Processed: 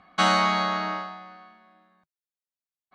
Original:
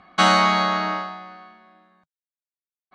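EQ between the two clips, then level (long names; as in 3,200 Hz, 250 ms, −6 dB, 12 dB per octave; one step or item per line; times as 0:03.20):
notch filter 360 Hz, Q 12
−4.5 dB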